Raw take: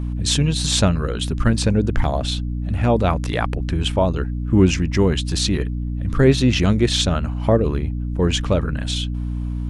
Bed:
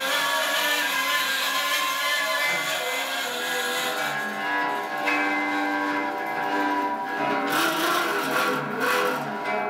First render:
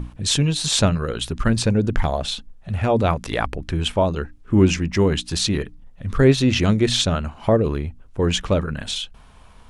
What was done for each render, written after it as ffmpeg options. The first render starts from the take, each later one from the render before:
ffmpeg -i in.wav -af "bandreject=frequency=60:width_type=h:width=6,bandreject=frequency=120:width_type=h:width=6,bandreject=frequency=180:width_type=h:width=6,bandreject=frequency=240:width_type=h:width=6,bandreject=frequency=300:width_type=h:width=6" out.wav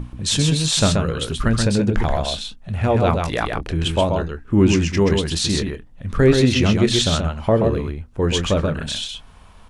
ffmpeg -i in.wav -filter_complex "[0:a]asplit=2[link_01][link_02];[link_02]adelay=25,volume=-13.5dB[link_03];[link_01][link_03]amix=inputs=2:normalize=0,aecho=1:1:130:0.596" out.wav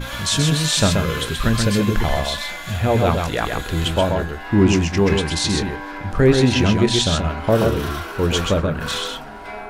ffmpeg -i in.wav -i bed.wav -filter_complex "[1:a]volume=-6.5dB[link_01];[0:a][link_01]amix=inputs=2:normalize=0" out.wav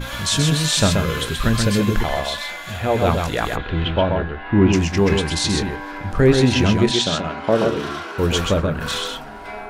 ffmpeg -i in.wav -filter_complex "[0:a]asettb=1/sr,asplit=3[link_01][link_02][link_03];[link_01]atrim=end=2.034[link_04];[link_02]atrim=start=2.03:end=3.02,asetpts=PTS-STARTPTS,afade=type=in:duration=0.004:curve=qsin,afade=type=out:start_time=0.986:duration=0.004:curve=qsin,bass=frequency=250:gain=-7,treble=frequency=4000:gain=-3[link_05];[link_03]atrim=start=3.016[link_06];[link_04][link_05]acrossfade=duration=0.004:curve1=hsin:curve2=qsin[link_07];[link_07][link_06]acrossfade=duration=0.004:curve1=qsin:curve2=hsin,asplit=3[link_08][link_09][link_10];[link_08]afade=type=out:start_time=3.55:duration=0.02[link_11];[link_09]lowpass=frequency=3300:width=0.5412,lowpass=frequency=3300:width=1.3066,afade=type=in:start_time=3.55:duration=0.02,afade=type=out:start_time=4.72:duration=0.02[link_12];[link_10]afade=type=in:start_time=4.72:duration=0.02[link_13];[link_11][link_12][link_13]amix=inputs=3:normalize=0,asettb=1/sr,asplit=3[link_14][link_15][link_16];[link_14]atrim=end=6.914[link_17];[link_15]atrim=start=6.91:end=8.18,asetpts=PTS-STARTPTS,afade=type=in:duration=0.004:curve=qsin,afade=type=out:start_time=1.266:duration=0.004:curve=qsin,highpass=180,lowpass=6700[link_18];[link_16]atrim=start=8.176[link_19];[link_17][link_18]acrossfade=duration=0.004:curve1=hsin:curve2=qsin[link_20];[link_20][link_19]acrossfade=duration=0.004:curve1=qsin:curve2=hsin" out.wav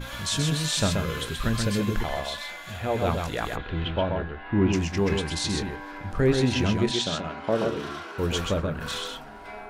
ffmpeg -i in.wav -af "volume=-7.5dB" out.wav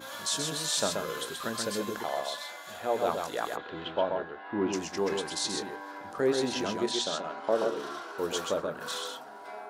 ffmpeg -i in.wav -af "highpass=400,equalizer=frequency=2400:width=1.4:gain=-9.5" out.wav

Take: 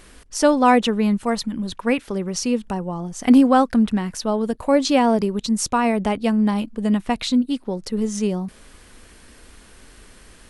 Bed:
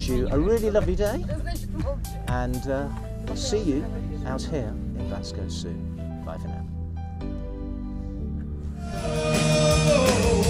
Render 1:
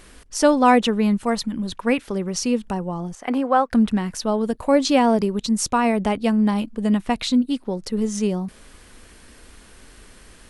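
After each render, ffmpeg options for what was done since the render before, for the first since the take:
ffmpeg -i in.wav -filter_complex "[0:a]asettb=1/sr,asplit=3[link_01][link_02][link_03];[link_01]atrim=end=3.154[link_04];[link_02]atrim=start=3.15:end=3.72,asetpts=PTS-STARTPTS,afade=type=in:duration=0.004:curve=qsin,afade=type=out:start_time=0.566:duration=0.004:curve=qsin,acrossover=split=390 2500:gain=0.141 1 0.224[link_05][link_06][link_07];[link_05][link_06][link_07]amix=inputs=3:normalize=0[link_08];[link_03]atrim=start=3.716[link_09];[link_04][link_08]acrossfade=duration=0.004:curve1=hsin:curve2=qsin[link_10];[link_10][link_09]acrossfade=duration=0.004:curve1=qsin:curve2=hsin" out.wav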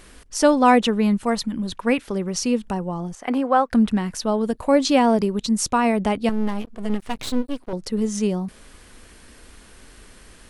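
ffmpeg -i in.wav -filter_complex "[0:a]asettb=1/sr,asplit=3[link_01][link_02][link_03];[link_01]atrim=end=6.294[link_04];[link_02]atrim=start=6.29:end=7.73,asetpts=PTS-STARTPTS,afade=type=in:duration=0.004:curve=qsin,afade=type=out:start_time=1.436:duration=0.004:curve=qsin,aeval=exprs='max(val(0),0)':channel_layout=same[link_05];[link_03]atrim=start=7.726[link_06];[link_04][link_05]acrossfade=duration=0.004:curve1=hsin:curve2=qsin[link_07];[link_07][link_06]acrossfade=duration=0.004:curve1=qsin:curve2=hsin" out.wav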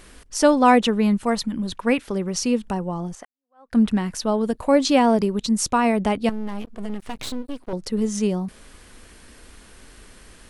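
ffmpeg -i in.wav -filter_complex "[0:a]asettb=1/sr,asplit=3[link_01][link_02][link_03];[link_01]atrim=end=6.294[link_04];[link_02]atrim=start=6.29:end=7.65,asetpts=PTS-STARTPTS,afade=type=in:duration=0.004:curve=qsin,afade=type=out:start_time=1.356:duration=0.004:curve=qsin,acompressor=threshold=-24dB:ratio=4:attack=3.2:release=140:knee=1:detection=peak[link_05];[link_03]atrim=start=7.646[link_06];[link_04][link_05]acrossfade=duration=0.004:curve1=hsin:curve2=qsin[link_07];[link_07][link_06]acrossfade=duration=0.004:curve1=qsin:curve2=hsin,asplit=2[link_08][link_09];[link_08]atrim=end=3.25,asetpts=PTS-STARTPTS,afade=type=out:start_time=3.246:duration=0.004:curve=hsin[link_10];[link_09]atrim=start=3.25,asetpts=PTS-STARTPTS,afade=type=in:duration=0.52:curve=exp[link_11];[link_10][link_11]concat=n=2:v=0:a=1" out.wav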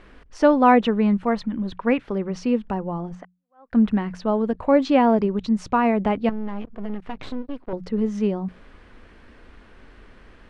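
ffmpeg -i in.wav -af "lowpass=2300,bandreject=frequency=60:width_type=h:width=6,bandreject=frequency=120:width_type=h:width=6,bandreject=frequency=180:width_type=h:width=6" out.wav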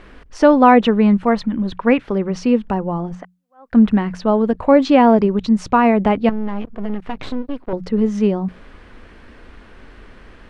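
ffmpeg -i in.wav -af "volume=6dB,alimiter=limit=-1dB:level=0:latency=1" out.wav

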